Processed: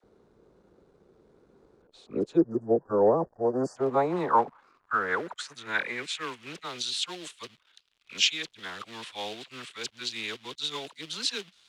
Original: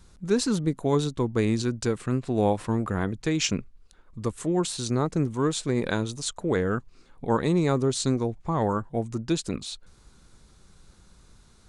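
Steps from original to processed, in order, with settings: reverse the whole clip; phase dispersion lows, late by 40 ms, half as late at 860 Hz; in parallel at -7 dB: companded quantiser 4-bit; on the sum: band-pass sweep 430 Hz -> 3.3 kHz, 2.82–6.78 s; spectral selection erased 2.37–3.77 s, 1.9–4.5 kHz; trim +5.5 dB

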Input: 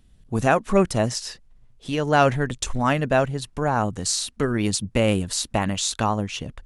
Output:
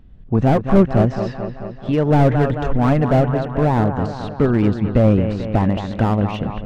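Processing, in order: de-esser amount 60%; treble shelf 5 kHz -8.5 dB; in parallel at -2.5 dB: compression, threshold -28 dBFS, peak gain reduction 14.5 dB; on the sum: tape spacing loss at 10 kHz 34 dB; on a send: feedback echo behind a low-pass 219 ms, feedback 64%, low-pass 3.9 kHz, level -10.5 dB; on the sum: slew-rate limiter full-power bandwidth 67 Hz; trim +6 dB

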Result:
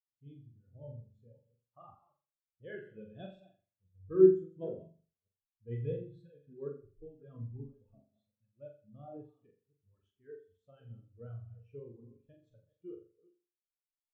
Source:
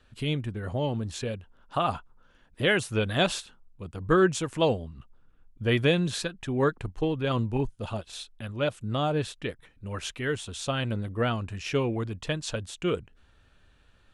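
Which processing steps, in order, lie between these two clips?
chunks repeated in reverse 278 ms, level -9 dB; flutter echo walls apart 7.3 m, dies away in 0.9 s; spectral contrast expander 2.5:1; trim -5.5 dB

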